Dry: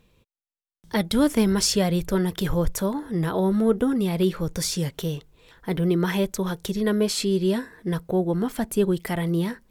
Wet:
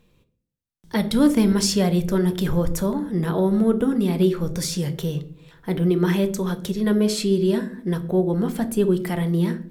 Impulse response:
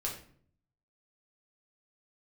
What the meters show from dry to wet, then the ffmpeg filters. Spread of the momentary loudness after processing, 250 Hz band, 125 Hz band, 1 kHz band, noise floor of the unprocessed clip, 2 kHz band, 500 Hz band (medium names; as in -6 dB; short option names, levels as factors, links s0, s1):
8 LU, +3.0 dB, +3.0 dB, 0.0 dB, under -85 dBFS, -0.5 dB, +2.0 dB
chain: -filter_complex "[0:a]bandreject=f=128:t=h:w=4,bandreject=f=256:t=h:w=4,bandreject=f=384:t=h:w=4,bandreject=f=512:t=h:w=4,bandreject=f=640:t=h:w=4,bandreject=f=768:t=h:w=4,asplit=2[s0][s1];[s1]equalizer=f=240:t=o:w=1.9:g=9.5[s2];[1:a]atrim=start_sample=2205[s3];[s2][s3]afir=irnorm=-1:irlink=0,volume=0.355[s4];[s0][s4]amix=inputs=2:normalize=0,volume=0.708"